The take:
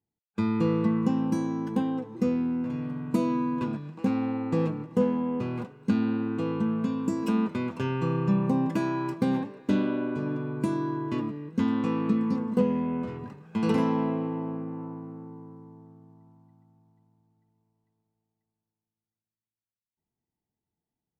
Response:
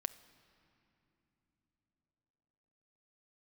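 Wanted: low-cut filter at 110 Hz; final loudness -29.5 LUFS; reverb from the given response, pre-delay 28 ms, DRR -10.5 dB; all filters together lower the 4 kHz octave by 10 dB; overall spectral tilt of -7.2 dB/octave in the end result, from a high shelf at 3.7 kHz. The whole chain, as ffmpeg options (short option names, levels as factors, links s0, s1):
-filter_complex "[0:a]highpass=110,highshelf=f=3700:g=-9,equalizer=f=4000:t=o:g=-9,asplit=2[s0][s1];[1:a]atrim=start_sample=2205,adelay=28[s2];[s1][s2]afir=irnorm=-1:irlink=0,volume=3.76[s3];[s0][s3]amix=inputs=2:normalize=0,volume=0.282"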